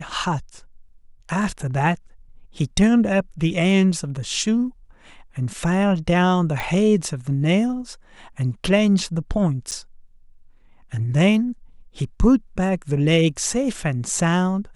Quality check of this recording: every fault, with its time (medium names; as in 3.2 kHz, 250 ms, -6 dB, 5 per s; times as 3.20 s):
6.60 s: pop
9.71–9.72 s: dropout 8.3 ms